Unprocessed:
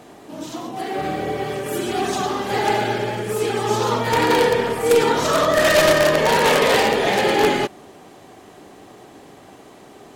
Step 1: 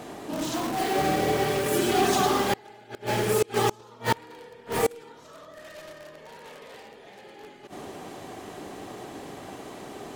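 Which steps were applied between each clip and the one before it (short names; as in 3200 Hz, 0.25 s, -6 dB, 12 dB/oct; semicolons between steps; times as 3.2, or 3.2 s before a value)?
flipped gate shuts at -11 dBFS, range -33 dB; in parallel at -6 dB: wrapped overs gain 26.5 dB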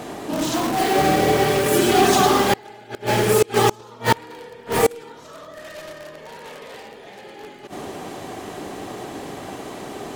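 crackle 22/s -49 dBFS; gain +7 dB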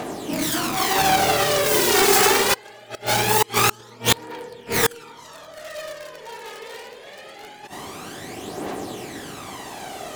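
self-modulated delay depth 0.45 ms; tilt +1.5 dB/oct; phaser 0.23 Hz, delay 2.4 ms, feedback 55%; gain -1 dB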